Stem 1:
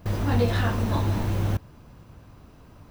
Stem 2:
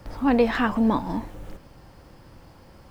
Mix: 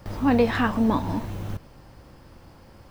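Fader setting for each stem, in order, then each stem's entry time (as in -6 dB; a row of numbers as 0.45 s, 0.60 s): -7.5 dB, -0.5 dB; 0.00 s, 0.00 s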